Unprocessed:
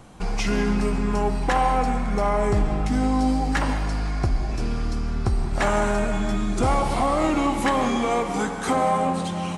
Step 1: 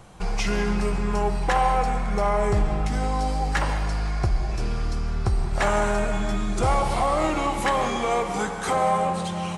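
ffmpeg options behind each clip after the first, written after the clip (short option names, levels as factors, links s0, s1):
-af "equalizer=f=260:w=4.8:g=-15"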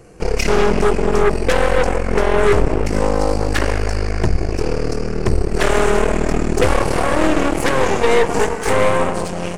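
-af "superequalizer=6b=2.24:7b=3.16:9b=0.398:10b=0.631:13b=0.251,aeval=exprs='0.447*(cos(1*acos(clip(val(0)/0.447,-1,1)))-cos(1*PI/2))+0.112*(cos(8*acos(clip(val(0)/0.447,-1,1)))-cos(8*PI/2))':c=same,volume=1.33"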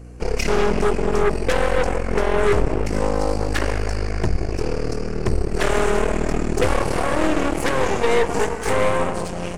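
-af "aeval=exprs='val(0)+0.02*(sin(2*PI*60*n/s)+sin(2*PI*2*60*n/s)/2+sin(2*PI*3*60*n/s)/3+sin(2*PI*4*60*n/s)/4+sin(2*PI*5*60*n/s)/5)':c=same,volume=0.631"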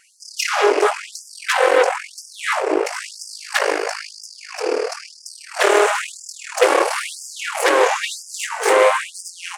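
-af "afftfilt=real='re*gte(b*sr/1024,290*pow(4800/290,0.5+0.5*sin(2*PI*1*pts/sr)))':imag='im*gte(b*sr/1024,290*pow(4800/290,0.5+0.5*sin(2*PI*1*pts/sr)))':win_size=1024:overlap=0.75,volume=2.24"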